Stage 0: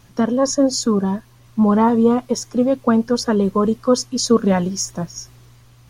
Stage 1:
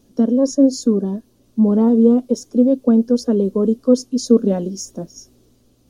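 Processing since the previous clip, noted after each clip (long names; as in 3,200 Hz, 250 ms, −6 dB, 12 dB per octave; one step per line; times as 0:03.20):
octave-band graphic EQ 125/250/500/1,000/2,000 Hz −11/+12/+7/−9/−11 dB
level −6 dB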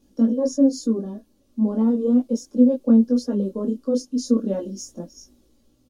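comb filter 3.6 ms, depth 40%
micro pitch shift up and down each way 13 cents
level −3 dB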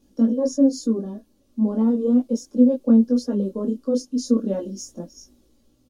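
no processing that can be heard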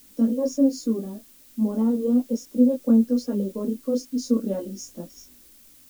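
background noise blue −50 dBFS
level −2.5 dB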